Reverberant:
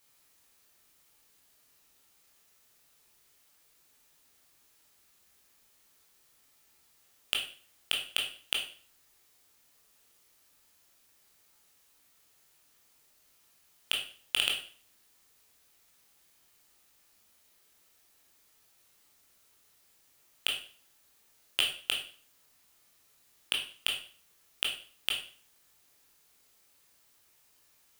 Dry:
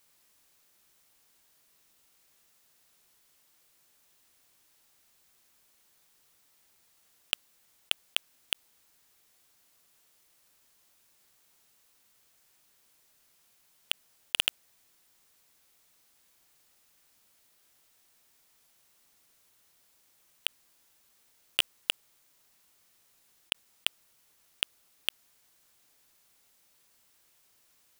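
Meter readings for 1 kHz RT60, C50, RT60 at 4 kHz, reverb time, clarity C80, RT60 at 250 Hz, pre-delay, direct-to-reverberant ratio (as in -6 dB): 0.45 s, 7.0 dB, 0.45 s, 0.45 s, 11.0 dB, 0.50 s, 16 ms, -1.0 dB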